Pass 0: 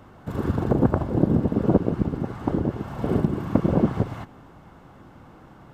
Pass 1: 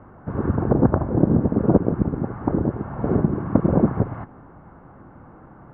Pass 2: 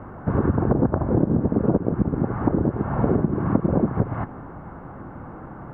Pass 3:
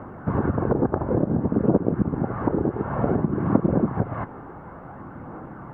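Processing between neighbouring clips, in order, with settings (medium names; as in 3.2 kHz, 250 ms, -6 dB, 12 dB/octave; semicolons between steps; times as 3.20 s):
low-pass 1.7 kHz 24 dB/octave; trim +2.5 dB
compression 6:1, threshold -24 dBFS, peak gain reduction 14 dB; trim +7.5 dB
bass shelf 90 Hz -10.5 dB; phaser 0.56 Hz, delay 2.6 ms, feedback 26%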